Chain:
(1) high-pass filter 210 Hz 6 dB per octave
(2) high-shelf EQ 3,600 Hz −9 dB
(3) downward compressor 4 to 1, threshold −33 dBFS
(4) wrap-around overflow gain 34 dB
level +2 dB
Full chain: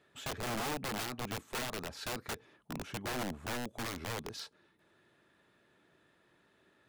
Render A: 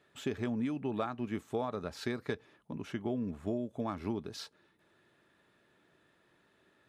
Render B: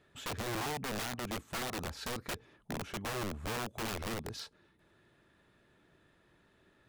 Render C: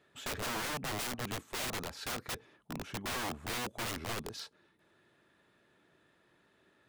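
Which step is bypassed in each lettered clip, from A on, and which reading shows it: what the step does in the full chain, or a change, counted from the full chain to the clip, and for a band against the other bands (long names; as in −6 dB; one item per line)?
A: 4, change in crest factor +10.5 dB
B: 1, change in momentary loudness spread −1 LU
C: 3, average gain reduction 2.5 dB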